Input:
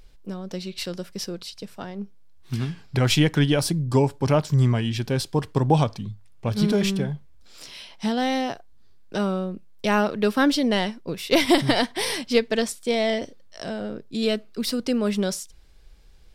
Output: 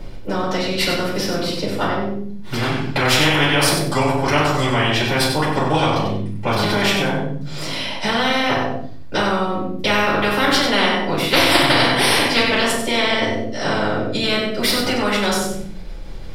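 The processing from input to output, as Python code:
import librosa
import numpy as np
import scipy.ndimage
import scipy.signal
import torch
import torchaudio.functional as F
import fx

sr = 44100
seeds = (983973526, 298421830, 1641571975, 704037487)

p1 = fx.dynamic_eq(x, sr, hz=5800.0, q=0.79, threshold_db=-42.0, ratio=4.0, max_db=-6)
p2 = fx.level_steps(p1, sr, step_db=17)
p3 = p1 + (p2 * 10.0 ** (1.5 / 20.0))
p4 = fx.high_shelf(p3, sr, hz=2900.0, db=-10.5)
p5 = p4 + fx.echo_feedback(p4, sr, ms=94, feedback_pct=23, wet_db=-7.0, dry=0)
p6 = fx.room_shoebox(p5, sr, seeds[0], volume_m3=250.0, walls='furnished', distance_m=7.0)
p7 = fx.spectral_comp(p6, sr, ratio=4.0)
y = p7 * 10.0 ** (-15.5 / 20.0)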